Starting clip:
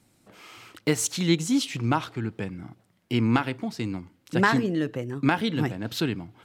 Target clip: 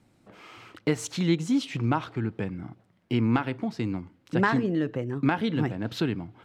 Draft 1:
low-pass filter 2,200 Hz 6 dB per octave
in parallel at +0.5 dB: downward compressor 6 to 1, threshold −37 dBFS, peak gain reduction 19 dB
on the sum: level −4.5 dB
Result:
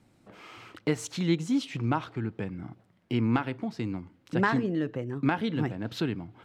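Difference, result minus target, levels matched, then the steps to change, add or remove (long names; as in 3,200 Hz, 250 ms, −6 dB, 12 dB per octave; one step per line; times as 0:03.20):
downward compressor: peak gain reduction +9 dB
change: downward compressor 6 to 1, threshold −26 dBFS, peak gain reduction 9.5 dB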